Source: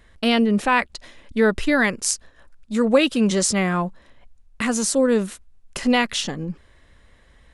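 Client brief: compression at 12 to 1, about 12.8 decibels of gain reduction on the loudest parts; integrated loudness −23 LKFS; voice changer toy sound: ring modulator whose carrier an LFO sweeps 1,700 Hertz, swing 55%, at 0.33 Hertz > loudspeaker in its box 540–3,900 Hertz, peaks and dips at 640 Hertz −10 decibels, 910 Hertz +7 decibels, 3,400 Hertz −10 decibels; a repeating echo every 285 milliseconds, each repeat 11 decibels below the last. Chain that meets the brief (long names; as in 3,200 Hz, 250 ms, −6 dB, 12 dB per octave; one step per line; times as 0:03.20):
downward compressor 12 to 1, threshold −23 dBFS
repeating echo 285 ms, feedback 28%, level −11 dB
ring modulator whose carrier an LFO sweeps 1,700 Hz, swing 55%, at 0.33 Hz
loudspeaker in its box 540–3,900 Hz, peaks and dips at 640 Hz −10 dB, 910 Hz +7 dB, 3,400 Hz −10 dB
level +8.5 dB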